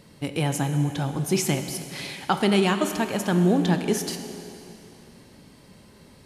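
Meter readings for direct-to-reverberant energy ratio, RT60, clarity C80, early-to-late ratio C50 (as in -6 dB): 7.0 dB, 2.9 s, 8.5 dB, 8.0 dB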